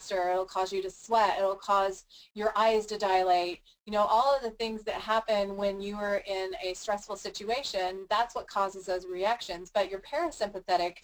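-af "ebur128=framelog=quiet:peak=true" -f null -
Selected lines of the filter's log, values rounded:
Integrated loudness:
  I:         -30.0 LUFS
  Threshold: -40.1 LUFS
Loudness range:
  LRA:         4.2 LU
  Threshold: -50.1 LUFS
  LRA low:   -32.4 LUFS
  LRA high:  -28.2 LUFS
True peak:
  Peak:      -14.1 dBFS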